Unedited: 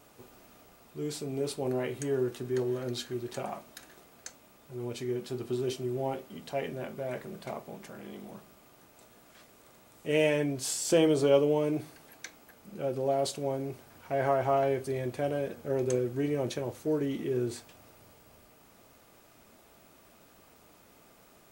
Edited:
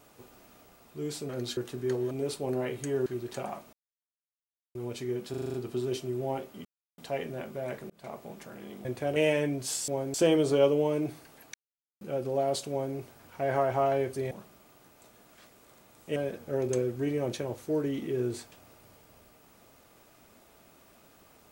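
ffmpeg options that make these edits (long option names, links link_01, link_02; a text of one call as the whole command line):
ffmpeg -i in.wav -filter_complex "[0:a]asplit=23[link_01][link_02][link_03][link_04][link_05][link_06][link_07][link_08][link_09][link_10][link_11][link_12][link_13][link_14][link_15][link_16][link_17][link_18][link_19][link_20][link_21][link_22][link_23];[link_01]atrim=end=1.292[link_24];[link_02]atrim=start=2.778:end=3.062[link_25];[link_03]atrim=start=2.238:end=2.782[link_26];[link_04]atrim=start=1.288:end=2.242[link_27];[link_05]atrim=start=3.058:end=3.73,asetpts=PTS-STARTPTS,afade=type=out:start_time=0.668:duration=0.004:curve=hsin[link_28];[link_06]atrim=start=3.73:end=4.75,asetpts=PTS-STARTPTS,volume=0[link_29];[link_07]atrim=start=4.75:end=5.342,asetpts=PTS-STARTPTS,afade=type=in:duration=0.004:curve=hsin[link_30];[link_08]atrim=start=5.298:end=5.342[link_31];[link_09]atrim=start=5.298:end=5.342[link_32];[link_10]atrim=start=5.298:end=5.342[link_33];[link_11]atrim=start=5.298:end=5.342[link_34];[link_12]atrim=start=5.298:end=5.342[link_35];[link_13]atrim=start=5.298:end=6.41,asetpts=PTS-STARTPTS,afade=type=out:start_time=1.108:duration=0.004:curve=hsin,apad=pad_dur=0.33[link_36];[link_14]atrim=start=6.41:end=7.33,asetpts=PTS-STARTPTS,afade=type=in:duration=0.004:curve=hsin,afade=type=out:start_time=0.916:duration=0.004:curve=hsin[link_37];[link_15]atrim=start=7.33:end=8.282,asetpts=PTS-STARTPTS,afade=type=in:duration=0.29[link_38];[link_16]atrim=start=15.018:end=15.332[link_39];[link_17]atrim=start=10.128:end=10.852[link_40];[link_18]atrim=start=13.408:end=13.672[link_41];[link_19]atrim=start=10.848:end=12.25,asetpts=PTS-STARTPTS,afade=type=out:start_time=1.398:duration=0.004:curve=hsin[link_42];[link_20]atrim=start=12.25:end=12.72,asetpts=PTS-STARTPTS,volume=0[link_43];[link_21]atrim=start=12.72:end=15.022,asetpts=PTS-STARTPTS,afade=type=in:duration=0.004:curve=hsin[link_44];[link_22]atrim=start=8.278:end=10.132[link_45];[link_23]atrim=start=15.328[link_46];[link_24][link_25]acrossfade=duration=0.004:curve1=hsin:curve2=hsin[link_47];[link_47][link_26]acrossfade=duration=0.004:curve1=hsin:curve2=hsin[link_48];[link_48][link_27]acrossfade=duration=0.004:curve1=hsin:curve2=hsin[link_49];[link_28][link_29][link_30]concat=n=3:v=0:a=1[link_50];[link_49][link_50]acrossfade=duration=0.004:curve1=hsin:curve2=hsin[link_51];[link_51][link_31]acrossfade=duration=0.004:curve1=hsin:curve2=hsin[link_52];[link_52][link_32]acrossfade=duration=0.004:curve1=hsin:curve2=hsin[link_53];[link_53][link_33]acrossfade=duration=0.004:curve1=hsin:curve2=hsin[link_54];[link_54][link_34]acrossfade=duration=0.004:curve1=hsin:curve2=hsin[link_55];[link_55][link_35]acrossfade=duration=0.004:curve1=hsin:curve2=hsin[link_56];[link_36][link_37][link_38]concat=n=3:v=0:a=1[link_57];[link_56][link_57]acrossfade=duration=0.004:curve1=hsin:curve2=hsin[link_58];[link_58][link_39]acrossfade=duration=0.004:curve1=hsin:curve2=hsin[link_59];[link_59][link_40]acrossfade=duration=0.004:curve1=hsin:curve2=hsin[link_60];[link_60][link_41]acrossfade=duration=0.004:curve1=hsin:curve2=hsin[link_61];[link_42][link_43][link_44]concat=n=3:v=0:a=1[link_62];[link_61][link_62]acrossfade=duration=0.004:curve1=hsin:curve2=hsin[link_63];[link_63][link_45]acrossfade=duration=0.004:curve1=hsin:curve2=hsin[link_64];[link_64][link_46]acrossfade=duration=0.004:curve1=hsin:curve2=hsin" out.wav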